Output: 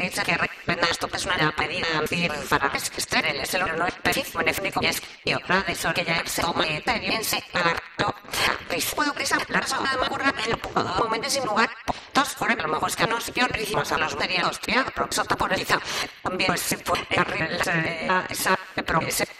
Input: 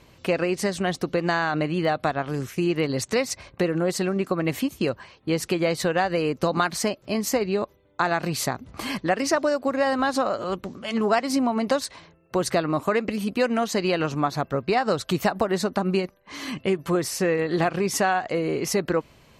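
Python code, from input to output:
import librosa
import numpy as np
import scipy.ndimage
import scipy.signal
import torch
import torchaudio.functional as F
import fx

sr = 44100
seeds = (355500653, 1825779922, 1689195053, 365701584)

y = fx.block_reorder(x, sr, ms=229.0, group=3)
y = fx.spec_gate(y, sr, threshold_db=-10, keep='weak')
y = fx.rider(y, sr, range_db=3, speed_s=0.5)
y = fx.echo_banded(y, sr, ms=84, feedback_pct=64, hz=2300.0, wet_db=-15.0)
y = fx.doppler_dist(y, sr, depth_ms=0.15)
y = F.gain(torch.from_numpy(y), 9.0).numpy()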